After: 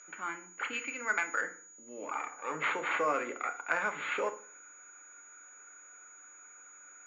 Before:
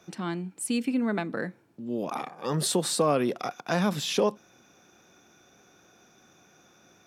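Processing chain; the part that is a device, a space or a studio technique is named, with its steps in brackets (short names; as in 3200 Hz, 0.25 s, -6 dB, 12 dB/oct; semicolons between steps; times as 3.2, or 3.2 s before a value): toy sound module (decimation joined by straight lines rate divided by 6×; pulse-width modulation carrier 6800 Hz; speaker cabinet 630–4300 Hz, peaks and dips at 710 Hz -7 dB, 1400 Hz +9 dB, 2200 Hz +10 dB, 3700 Hz -5 dB); 0.73–1.41 tilt shelf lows -6.5 dB, about 650 Hz; FDN reverb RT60 0.45 s, low-frequency decay 1.25×, high-frequency decay 0.75×, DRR 5.5 dB; gain -3.5 dB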